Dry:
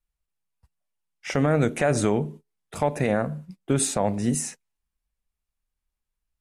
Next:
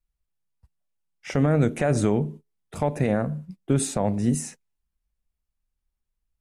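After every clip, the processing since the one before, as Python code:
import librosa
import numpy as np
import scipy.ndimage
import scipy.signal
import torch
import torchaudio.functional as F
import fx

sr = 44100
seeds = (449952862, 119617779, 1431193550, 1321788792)

y = fx.low_shelf(x, sr, hz=400.0, db=7.5)
y = y * 10.0 ** (-4.0 / 20.0)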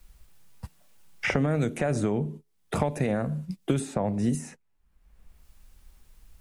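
y = fx.band_squash(x, sr, depth_pct=100)
y = y * 10.0 ** (-4.0 / 20.0)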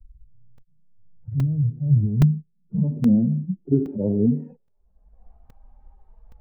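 y = fx.hpss_only(x, sr, part='harmonic')
y = fx.filter_sweep_lowpass(y, sr, from_hz=110.0, to_hz=780.0, start_s=1.61, end_s=5.33, q=4.0)
y = fx.buffer_crackle(y, sr, first_s=0.58, period_s=0.82, block=128, kind='zero')
y = y * 10.0 ** (4.5 / 20.0)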